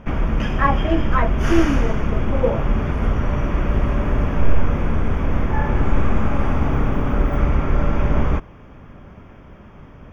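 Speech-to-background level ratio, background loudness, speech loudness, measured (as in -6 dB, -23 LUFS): -1.5 dB, -22.0 LUFS, -23.5 LUFS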